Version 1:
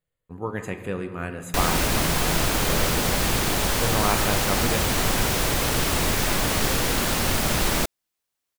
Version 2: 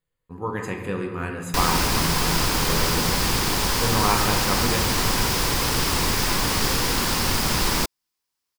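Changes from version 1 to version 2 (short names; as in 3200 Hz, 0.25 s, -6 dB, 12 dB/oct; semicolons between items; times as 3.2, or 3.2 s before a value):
speech: send +6.0 dB; master: add thirty-one-band EQ 630 Hz -7 dB, 1000 Hz +5 dB, 5000 Hz +7 dB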